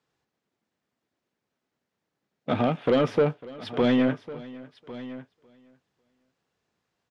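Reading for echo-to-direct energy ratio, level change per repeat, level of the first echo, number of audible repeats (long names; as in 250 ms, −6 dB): −15.0 dB, +3.5 dB, −20.0 dB, 2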